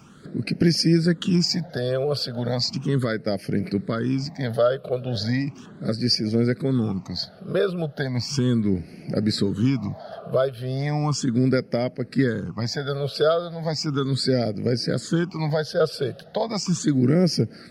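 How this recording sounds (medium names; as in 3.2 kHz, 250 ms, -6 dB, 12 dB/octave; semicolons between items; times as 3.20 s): phasing stages 8, 0.36 Hz, lowest notch 260–1100 Hz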